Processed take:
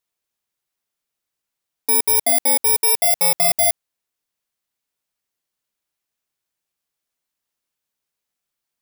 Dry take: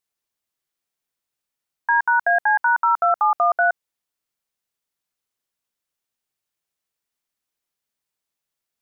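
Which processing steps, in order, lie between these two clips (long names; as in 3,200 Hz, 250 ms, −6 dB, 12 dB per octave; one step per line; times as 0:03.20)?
samples in bit-reversed order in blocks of 32 samples
level +1.5 dB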